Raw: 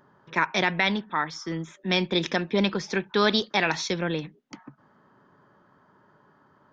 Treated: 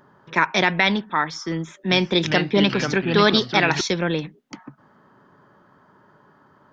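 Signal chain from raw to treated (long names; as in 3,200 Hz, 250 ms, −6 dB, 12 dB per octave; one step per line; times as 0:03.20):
0:01.57–0:03.81: delay with pitch and tempo change per echo 339 ms, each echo −3 semitones, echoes 2, each echo −6 dB
level +5 dB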